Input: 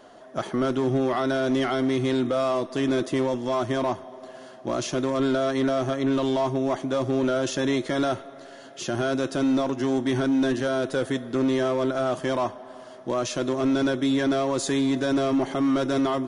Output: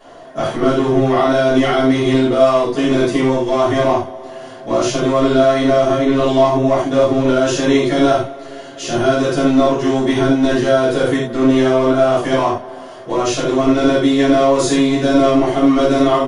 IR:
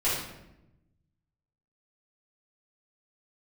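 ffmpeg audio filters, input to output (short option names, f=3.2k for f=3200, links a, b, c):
-filter_complex "[0:a]asplit=2[a][b];[b]adelay=816.3,volume=-27dB,highshelf=f=4k:g=-18.4[c];[a][c]amix=inputs=2:normalize=0[d];[1:a]atrim=start_sample=2205,afade=t=out:st=0.16:d=0.01,atrim=end_sample=7497[e];[d][e]afir=irnorm=-1:irlink=0"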